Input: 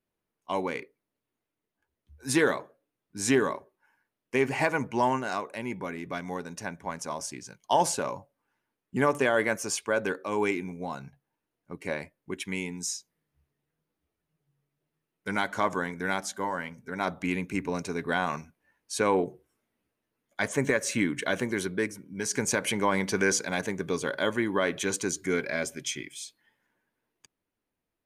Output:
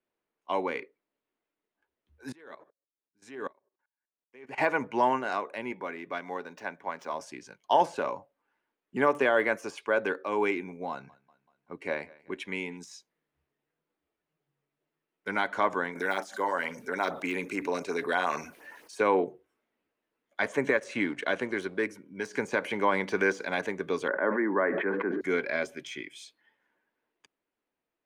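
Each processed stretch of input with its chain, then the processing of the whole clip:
2.32–4.58 s: level held to a coarse grid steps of 16 dB + sawtooth tremolo in dB swelling 2.6 Hz, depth 27 dB
5.72–7.14 s: median filter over 5 samples + high-pass 270 Hz 6 dB/octave
10.90–12.77 s: low-pass 12 kHz + feedback delay 191 ms, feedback 54%, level -23 dB
15.95–19.01 s: tone controls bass -10 dB, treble +9 dB + LFO notch sine 8.7 Hz 730–4100 Hz + level flattener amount 50%
20.77–21.83 s: companding laws mixed up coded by A + steep low-pass 11 kHz 48 dB/octave
24.08–25.21 s: Chebyshev band-pass 190–1900 Hz, order 4 + decay stretcher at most 24 dB/s
whole clip: de-esser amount 75%; three-band isolator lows -13 dB, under 250 Hz, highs -13 dB, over 4 kHz; trim +1 dB

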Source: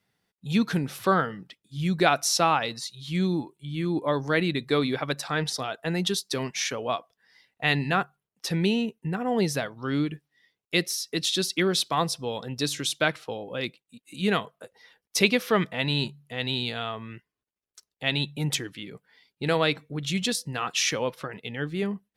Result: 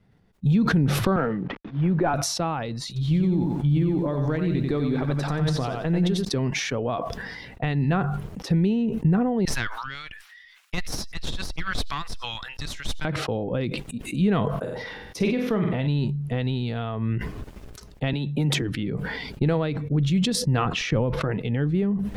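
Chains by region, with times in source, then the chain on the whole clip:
1.16–2.14 s: CVSD coder 32 kbps + three-band isolator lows -14 dB, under 240 Hz, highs -23 dB, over 2.5 kHz
2.87–6.25 s: compression 4:1, threshold -29 dBFS + bit-crushed delay 90 ms, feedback 35%, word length 9-bit, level -4.5 dB
9.45–13.05 s: high-pass 1.4 kHz 24 dB/octave + valve stage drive 20 dB, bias 0.75
14.51–15.87 s: band-stop 7.8 kHz, Q 19 + doubling 23 ms -12.5 dB + flutter echo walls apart 8.1 m, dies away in 0.38 s
18.13–18.62 s: high-pass 190 Hz + three bands compressed up and down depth 100%
20.65–21.21 s: low-pass 2.2 kHz 6 dB/octave + bass shelf 130 Hz +11.5 dB
whole clip: compression 6:1, threshold -35 dBFS; tilt EQ -4 dB/octave; decay stretcher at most 29 dB/s; trim +6.5 dB

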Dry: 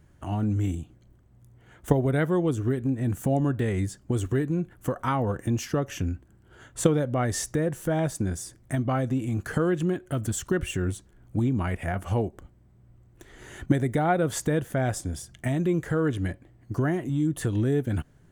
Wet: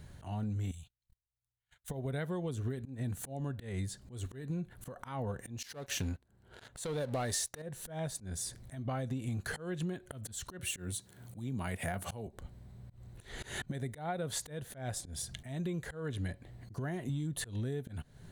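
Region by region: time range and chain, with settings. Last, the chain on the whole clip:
0.71–1.90 s: amplifier tone stack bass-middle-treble 10-0-10 + gate -59 dBFS, range -34 dB
5.63–7.62 s: tone controls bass -6 dB, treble +3 dB + waveshaping leveller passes 3 + tape noise reduction on one side only decoder only
10.59–12.27 s: high-pass 95 Hz 24 dB/octave + treble shelf 7.2 kHz +11 dB
whole clip: graphic EQ with 31 bands 315 Hz -10 dB, 1.25 kHz -4 dB, 4 kHz +11 dB, 10 kHz +4 dB; compression 12:1, threshold -39 dBFS; slow attack 149 ms; trim +6 dB

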